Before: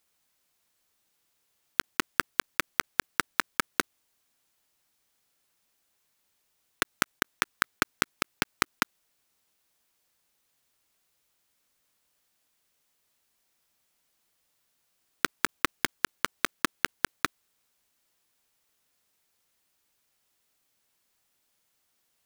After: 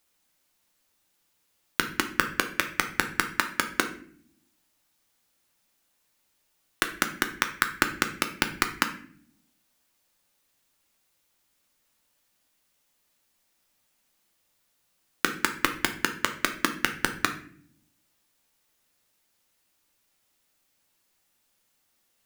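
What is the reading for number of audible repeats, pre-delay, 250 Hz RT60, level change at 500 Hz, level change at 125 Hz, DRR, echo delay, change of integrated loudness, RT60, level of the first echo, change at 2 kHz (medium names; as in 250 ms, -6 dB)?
no echo, 3 ms, 1.0 s, +2.5 dB, +3.5 dB, 5.0 dB, no echo, +2.5 dB, 0.55 s, no echo, +2.5 dB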